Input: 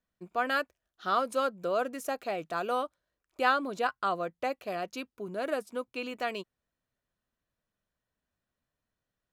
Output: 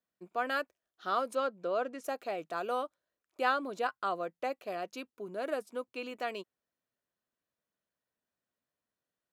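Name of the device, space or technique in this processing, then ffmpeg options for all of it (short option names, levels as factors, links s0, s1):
filter by subtraction: -filter_complex "[0:a]asettb=1/sr,asplit=3[s0][s1][s2];[s0]atrim=end=1.354[s3];[s1]atrim=start=1.35:end=2.04,asetpts=PTS-STARTPTS,afade=t=in:d=0.004:c=qsin,afade=t=out:st=0.686:d=0.004:c=qsin,lowpass=5300[s4];[s2]atrim=start=2.036[s5];[s3][s4]acrossfade=d=0.004:c1=hsin:c2=qsin[s6];[s6][s5]acrossfade=d=0.004:c1=qsin:c2=hsin,asplit=2[s7][s8];[s8]lowpass=370,volume=-1[s9];[s7][s9]amix=inputs=2:normalize=0,volume=0.596"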